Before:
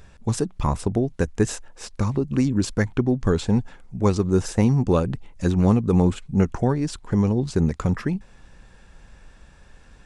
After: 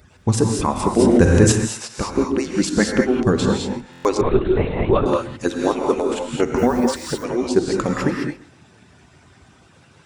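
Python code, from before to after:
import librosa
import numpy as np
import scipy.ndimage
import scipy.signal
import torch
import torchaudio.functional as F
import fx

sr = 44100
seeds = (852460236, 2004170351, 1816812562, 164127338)

p1 = fx.hpss_only(x, sr, part='percussive')
p2 = scipy.signal.sosfilt(scipy.signal.butter(2, 47.0, 'highpass', fs=sr, output='sos'), p1)
p3 = p2 + fx.echo_feedback(p2, sr, ms=133, feedback_pct=28, wet_db=-20, dry=0)
p4 = fx.rev_gated(p3, sr, seeds[0], gate_ms=240, shape='rising', drr_db=0.5)
p5 = fx.lpc_vocoder(p4, sr, seeds[1], excitation='whisper', order=10, at=(4.21, 5.06))
p6 = fx.dmg_noise_colour(p5, sr, seeds[2], colour='blue', level_db=-55.0, at=(6.57, 7.23), fade=0.02)
p7 = fx.rider(p6, sr, range_db=10, speed_s=2.0)
p8 = p6 + (p7 * 10.0 ** (0.0 / 20.0))
p9 = fx.buffer_glitch(p8, sr, at_s=(3.91,), block=1024, repeats=5)
p10 = fx.env_flatten(p9, sr, amount_pct=70, at=(0.98, 1.51), fade=0.02)
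y = p10 * 10.0 ** (-1.0 / 20.0)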